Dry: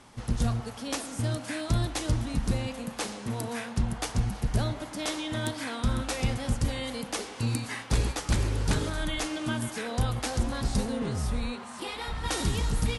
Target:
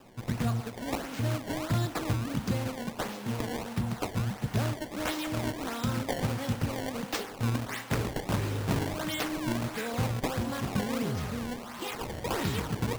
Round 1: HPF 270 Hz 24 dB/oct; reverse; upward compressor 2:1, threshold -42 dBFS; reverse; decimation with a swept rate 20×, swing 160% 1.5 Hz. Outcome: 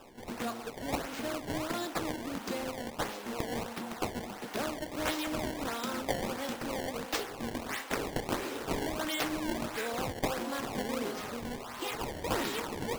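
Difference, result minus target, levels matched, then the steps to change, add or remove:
125 Hz band -11.0 dB
change: HPF 92 Hz 24 dB/oct

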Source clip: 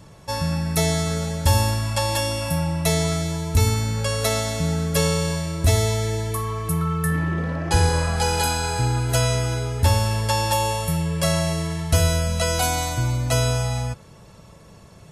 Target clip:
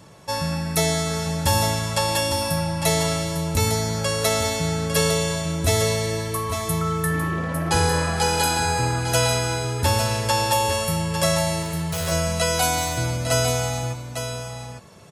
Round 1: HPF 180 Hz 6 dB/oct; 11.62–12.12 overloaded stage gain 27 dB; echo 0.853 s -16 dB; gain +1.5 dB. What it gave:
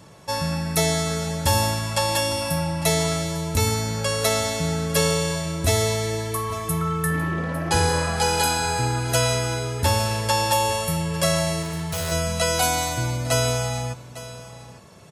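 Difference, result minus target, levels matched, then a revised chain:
echo-to-direct -8 dB
HPF 180 Hz 6 dB/oct; 11.62–12.12 overloaded stage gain 27 dB; echo 0.853 s -8 dB; gain +1.5 dB

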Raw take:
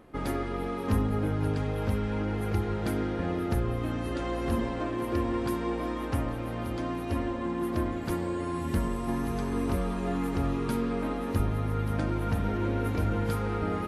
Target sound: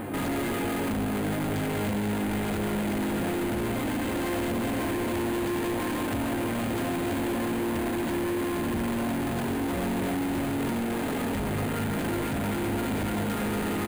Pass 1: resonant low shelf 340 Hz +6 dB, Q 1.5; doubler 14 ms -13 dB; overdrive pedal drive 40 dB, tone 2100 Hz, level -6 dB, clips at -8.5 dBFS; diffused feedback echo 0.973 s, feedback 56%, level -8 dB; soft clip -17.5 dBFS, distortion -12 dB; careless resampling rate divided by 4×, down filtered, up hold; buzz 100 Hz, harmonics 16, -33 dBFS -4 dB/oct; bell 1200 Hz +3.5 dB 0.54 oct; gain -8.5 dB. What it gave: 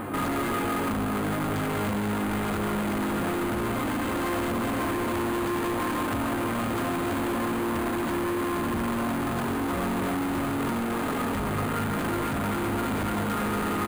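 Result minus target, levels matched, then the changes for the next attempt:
1000 Hz band +3.5 dB
change: bell 1200 Hz -6 dB 0.54 oct

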